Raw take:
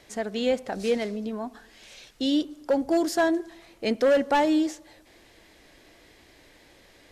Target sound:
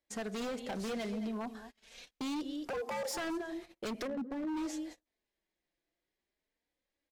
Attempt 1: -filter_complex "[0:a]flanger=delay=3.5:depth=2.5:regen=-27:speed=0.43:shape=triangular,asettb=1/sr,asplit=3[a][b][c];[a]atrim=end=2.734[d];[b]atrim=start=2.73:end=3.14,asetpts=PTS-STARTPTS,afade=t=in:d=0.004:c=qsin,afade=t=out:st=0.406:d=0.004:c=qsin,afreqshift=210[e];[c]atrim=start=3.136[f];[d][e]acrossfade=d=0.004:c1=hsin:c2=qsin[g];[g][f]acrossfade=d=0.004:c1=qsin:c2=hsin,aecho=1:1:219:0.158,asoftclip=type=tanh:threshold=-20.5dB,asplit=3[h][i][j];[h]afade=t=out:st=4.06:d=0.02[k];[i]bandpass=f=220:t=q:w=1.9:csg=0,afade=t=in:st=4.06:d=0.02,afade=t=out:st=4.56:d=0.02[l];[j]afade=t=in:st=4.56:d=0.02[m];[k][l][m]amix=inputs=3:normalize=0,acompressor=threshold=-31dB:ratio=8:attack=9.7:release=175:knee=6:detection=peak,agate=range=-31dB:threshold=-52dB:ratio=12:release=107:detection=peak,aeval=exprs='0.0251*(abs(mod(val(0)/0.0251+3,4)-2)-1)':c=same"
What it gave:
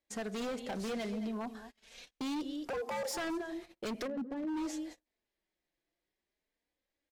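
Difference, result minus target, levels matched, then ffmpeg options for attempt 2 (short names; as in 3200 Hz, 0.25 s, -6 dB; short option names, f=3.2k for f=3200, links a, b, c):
soft clip: distortion +12 dB
-filter_complex "[0:a]flanger=delay=3.5:depth=2.5:regen=-27:speed=0.43:shape=triangular,asettb=1/sr,asplit=3[a][b][c];[a]atrim=end=2.734[d];[b]atrim=start=2.73:end=3.14,asetpts=PTS-STARTPTS,afade=t=in:d=0.004:c=qsin,afade=t=out:st=0.406:d=0.004:c=qsin,afreqshift=210[e];[c]atrim=start=3.136[f];[d][e]acrossfade=d=0.004:c1=hsin:c2=qsin[g];[g][f]acrossfade=d=0.004:c1=qsin:c2=hsin,aecho=1:1:219:0.158,asoftclip=type=tanh:threshold=-13.5dB,asplit=3[h][i][j];[h]afade=t=out:st=4.06:d=0.02[k];[i]bandpass=f=220:t=q:w=1.9:csg=0,afade=t=in:st=4.06:d=0.02,afade=t=out:st=4.56:d=0.02[l];[j]afade=t=in:st=4.56:d=0.02[m];[k][l][m]amix=inputs=3:normalize=0,acompressor=threshold=-31dB:ratio=8:attack=9.7:release=175:knee=6:detection=peak,agate=range=-31dB:threshold=-52dB:ratio=12:release=107:detection=peak,aeval=exprs='0.0251*(abs(mod(val(0)/0.0251+3,4)-2)-1)':c=same"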